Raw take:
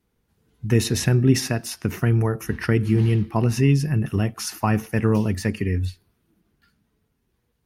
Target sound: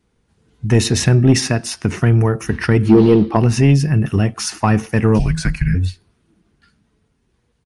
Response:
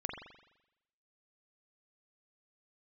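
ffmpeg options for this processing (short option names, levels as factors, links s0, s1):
-filter_complex "[0:a]asplit=3[s0][s1][s2];[s0]afade=t=out:st=2.88:d=0.02[s3];[s1]equalizer=f=125:t=o:w=1:g=-7,equalizer=f=250:t=o:w=1:g=7,equalizer=f=500:t=o:w=1:g=12,equalizer=f=1000:t=o:w=1:g=6,equalizer=f=2000:t=o:w=1:g=-6,equalizer=f=4000:t=o:w=1:g=9,equalizer=f=8000:t=o:w=1:g=-11,afade=t=in:st=2.88:d=0.02,afade=t=out:st=3.35:d=0.02[s4];[s2]afade=t=in:st=3.35:d=0.02[s5];[s3][s4][s5]amix=inputs=3:normalize=0,aresample=22050,aresample=44100,asplit=3[s6][s7][s8];[s6]afade=t=out:st=5.18:d=0.02[s9];[s7]afreqshift=-250,afade=t=in:st=5.18:d=0.02,afade=t=out:st=5.74:d=0.02[s10];[s8]afade=t=in:st=5.74:d=0.02[s11];[s9][s10][s11]amix=inputs=3:normalize=0,acontrast=81"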